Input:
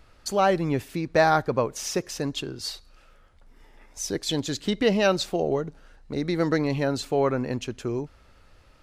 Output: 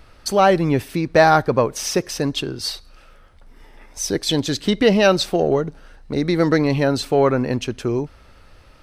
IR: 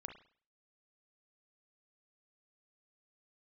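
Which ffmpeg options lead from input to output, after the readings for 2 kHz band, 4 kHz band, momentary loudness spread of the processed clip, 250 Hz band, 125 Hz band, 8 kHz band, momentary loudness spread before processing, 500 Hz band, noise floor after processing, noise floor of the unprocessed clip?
+6.5 dB, +7.0 dB, 11 LU, +7.0 dB, +7.0 dB, +6.0 dB, 12 LU, +7.0 dB, -48 dBFS, -55 dBFS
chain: -filter_complex "[0:a]asplit=2[a][b];[b]asoftclip=type=tanh:threshold=-17.5dB,volume=-10dB[c];[a][c]amix=inputs=2:normalize=0,bandreject=f=7k:w=7.8,volume=5dB"

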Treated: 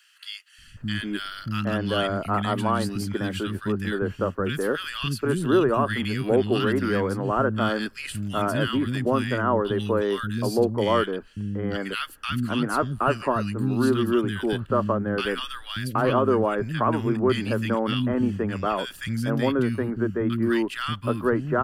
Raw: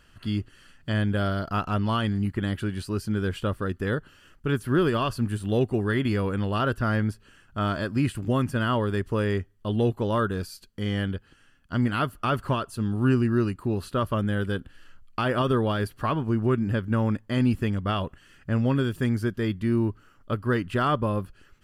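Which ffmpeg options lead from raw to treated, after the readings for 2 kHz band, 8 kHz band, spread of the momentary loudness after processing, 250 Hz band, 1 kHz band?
+3.0 dB, +5.5 dB, 7 LU, +1.5 dB, +3.5 dB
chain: -filter_complex "[0:a]acrossover=split=230|1600[a][b][c];[a]adelay=580[d];[b]adelay=770[e];[d][e][c]amix=inputs=3:normalize=0,acrossover=split=180|830|1700[f][g][h][i];[f]acompressor=threshold=-40dB:ratio=6[j];[j][g][h][i]amix=inputs=4:normalize=0,volume=5.5dB"

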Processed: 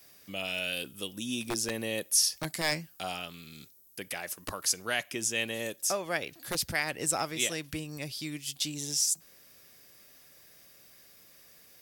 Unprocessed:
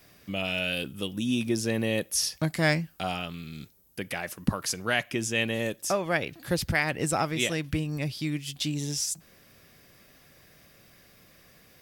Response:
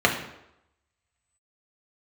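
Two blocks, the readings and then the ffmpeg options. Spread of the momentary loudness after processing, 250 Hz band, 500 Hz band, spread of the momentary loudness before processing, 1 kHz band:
12 LU, -9.0 dB, -6.0 dB, 8 LU, -4.5 dB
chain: -filter_complex "[0:a]bass=f=250:g=-7,treble=f=4k:g=9,acrossover=split=740[a][b];[a]aeval=exprs='(mod(11.2*val(0)+1,2)-1)/11.2':c=same[c];[c][b]amix=inputs=2:normalize=0,volume=-5dB"

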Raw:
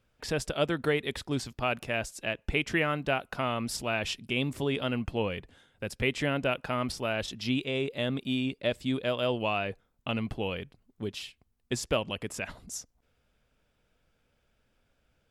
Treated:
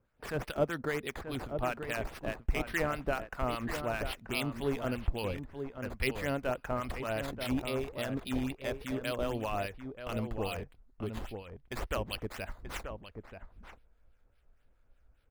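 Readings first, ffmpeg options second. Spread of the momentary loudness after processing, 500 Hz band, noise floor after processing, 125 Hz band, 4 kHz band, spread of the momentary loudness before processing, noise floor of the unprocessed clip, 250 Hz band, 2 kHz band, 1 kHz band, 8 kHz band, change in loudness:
10 LU, -3.5 dB, -67 dBFS, -3.5 dB, -8.0 dB, 10 LU, -74 dBFS, -4.5 dB, -5.0 dB, -3.0 dB, -8.0 dB, -4.5 dB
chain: -filter_complex "[0:a]acrossover=split=2300[a][b];[b]acrusher=samples=11:mix=1:aa=0.000001:lfo=1:lforange=11:lforate=3.6[c];[a][c]amix=inputs=2:normalize=0,acrossover=split=1100[d][e];[d]aeval=exprs='val(0)*(1-0.7/2+0.7/2*cos(2*PI*4.9*n/s))':c=same[f];[e]aeval=exprs='val(0)*(1-0.7/2-0.7/2*cos(2*PI*4.9*n/s))':c=same[g];[f][g]amix=inputs=2:normalize=0,asubboost=boost=5.5:cutoff=60,asplit=2[h][i];[i]adelay=932.9,volume=-7dB,highshelf=f=4k:g=-21[j];[h][j]amix=inputs=2:normalize=0"

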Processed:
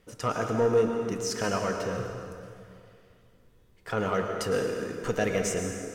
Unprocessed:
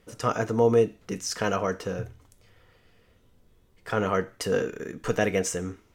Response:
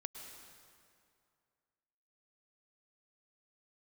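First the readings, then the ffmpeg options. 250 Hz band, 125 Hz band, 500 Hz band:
-1.5 dB, -2.0 dB, -1.5 dB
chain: -filter_complex "[0:a]asoftclip=type=tanh:threshold=-14.5dB[a];[1:a]atrim=start_sample=2205[b];[a][b]afir=irnorm=-1:irlink=0,volume=2.5dB"

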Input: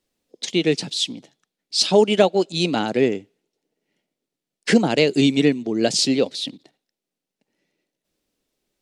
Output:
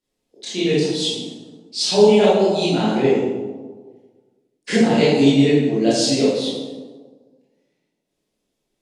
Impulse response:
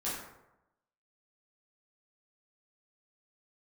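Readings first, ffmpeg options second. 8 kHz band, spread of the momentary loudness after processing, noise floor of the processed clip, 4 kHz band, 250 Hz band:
0.0 dB, 17 LU, -76 dBFS, 0.0 dB, +3.0 dB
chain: -filter_complex "[1:a]atrim=start_sample=2205,asetrate=25578,aresample=44100[a];[0:a][a]afir=irnorm=-1:irlink=0,volume=-7dB"

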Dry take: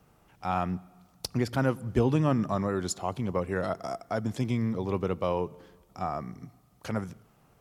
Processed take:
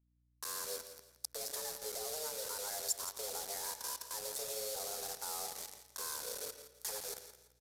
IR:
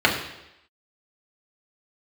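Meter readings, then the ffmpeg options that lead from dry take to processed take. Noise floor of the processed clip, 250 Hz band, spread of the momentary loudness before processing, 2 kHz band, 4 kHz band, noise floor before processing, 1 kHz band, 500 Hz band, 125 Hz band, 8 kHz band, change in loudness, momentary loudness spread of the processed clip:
-74 dBFS, -34.0 dB, 12 LU, -10.0 dB, +2.0 dB, -63 dBFS, -13.5 dB, -14.5 dB, -36.0 dB, +6.5 dB, -9.5 dB, 8 LU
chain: -filter_complex "[0:a]highpass=f=76:w=0.5412,highpass=f=76:w=1.3066,highshelf=f=3.3k:g=-3,bandreject=f=50:t=h:w=6,bandreject=f=100:t=h:w=6,bandreject=f=150:t=h:w=6,bandreject=f=200:t=h:w=6,bandreject=f=250:t=h:w=6,bandreject=f=300:t=h:w=6,bandreject=f=350:t=h:w=6,bandreject=f=400:t=h:w=6,bandreject=f=450:t=h:w=6,bandreject=f=500:t=h:w=6,acompressor=threshold=-37dB:ratio=8,alimiter=level_in=12dB:limit=-24dB:level=0:latency=1:release=198,volume=-12dB,afreqshift=310,acrusher=bits=7:mix=0:aa=0.000001,aeval=exprs='val(0)+0.000224*(sin(2*PI*60*n/s)+sin(2*PI*2*60*n/s)/2+sin(2*PI*3*60*n/s)/3+sin(2*PI*4*60*n/s)/4+sin(2*PI*5*60*n/s)/5)':c=same,aexciter=amount=6.2:drive=4.5:freq=4k,aecho=1:1:168|336|504:0.251|0.0754|0.0226,asplit=2[a][b];[1:a]atrim=start_sample=2205,asetrate=57330,aresample=44100,adelay=114[c];[b][c]afir=irnorm=-1:irlink=0,volume=-30dB[d];[a][d]amix=inputs=2:normalize=0,aresample=32000,aresample=44100,volume=-2dB"

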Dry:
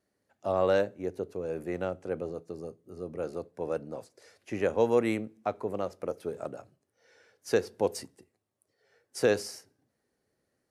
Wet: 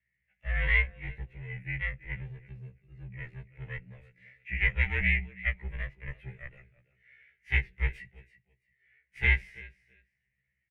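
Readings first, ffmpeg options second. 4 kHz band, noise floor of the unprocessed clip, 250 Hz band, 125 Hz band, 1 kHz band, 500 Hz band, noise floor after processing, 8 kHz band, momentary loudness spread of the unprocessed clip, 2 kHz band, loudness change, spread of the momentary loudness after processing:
-0.5 dB, -80 dBFS, -12.0 dB, +9.0 dB, -14.0 dB, -22.0 dB, -81 dBFS, under -25 dB, 17 LU, +12.0 dB, +1.0 dB, 22 LU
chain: -af "highpass=f=88:w=0.5412,highpass=f=88:w=1.3066,aecho=1:1:332|664:0.158|0.0285,aeval=exprs='0.251*(cos(1*acos(clip(val(0)/0.251,-1,1)))-cos(1*PI/2))+0.112*(cos(4*acos(clip(val(0)/0.251,-1,1)))-cos(4*PI/2))':c=same,afreqshift=-39,firequalizer=gain_entry='entry(160,0);entry(250,-26);entry(620,-21);entry(1200,-23);entry(2000,13);entry(4700,-29)':delay=0.05:min_phase=1,afftfilt=real='re*1.73*eq(mod(b,3),0)':imag='im*1.73*eq(mod(b,3),0)':win_size=2048:overlap=0.75,volume=3dB"

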